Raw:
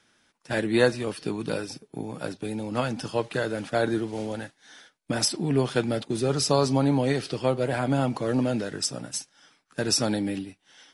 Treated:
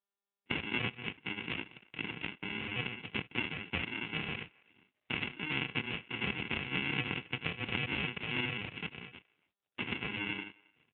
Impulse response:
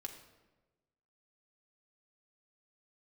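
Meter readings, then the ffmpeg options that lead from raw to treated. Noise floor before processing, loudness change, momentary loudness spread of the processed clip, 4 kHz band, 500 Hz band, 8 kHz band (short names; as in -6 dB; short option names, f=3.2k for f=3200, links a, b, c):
-68 dBFS, -9.5 dB, 8 LU, -5.5 dB, -20.5 dB, under -40 dB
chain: -filter_complex "[0:a]highpass=130,agate=range=-37dB:threshold=-53dB:ratio=16:detection=peak,afwtdn=0.0158,equalizer=f=230:w=0.59:g=-9.5,aecho=1:1:1.3:0.45,adynamicequalizer=threshold=0.00447:dfrequency=760:dqfactor=5.3:tfrequency=760:tqfactor=5.3:attack=5:release=100:ratio=0.375:range=3:mode=boostabove:tftype=bell,acompressor=threshold=-33dB:ratio=3,aresample=11025,acrusher=samples=18:mix=1:aa=0.000001,aresample=44100,crystalizer=i=7.5:c=0,lowpass=f=2.6k:t=q:w=4.2,asplit=2[a][b];[b]adelay=270,highpass=300,lowpass=3.4k,asoftclip=type=hard:threshold=-20.5dB,volume=-25dB[c];[a][c]amix=inputs=2:normalize=0,volume=-2.5dB" -ar 8000 -c:a libopencore_amrnb -b:a 7400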